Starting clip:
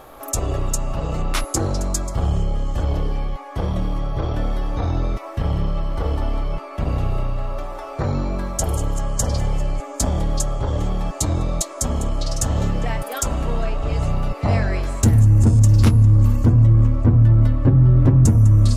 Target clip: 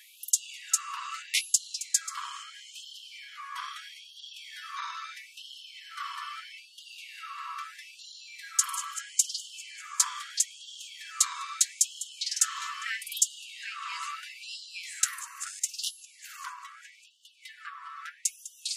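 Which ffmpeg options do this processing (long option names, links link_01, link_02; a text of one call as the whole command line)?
ffmpeg -i in.wav -af "lowpass=12000,afftfilt=real='re*gte(b*sr/1024,940*pow(2800/940,0.5+0.5*sin(2*PI*0.77*pts/sr)))':imag='im*gte(b*sr/1024,940*pow(2800/940,0.5+0.5*sin(2*PI*0.77*pts/sr)))':win_size=1024:overlap=0.75,volume=1.5dB" out.wav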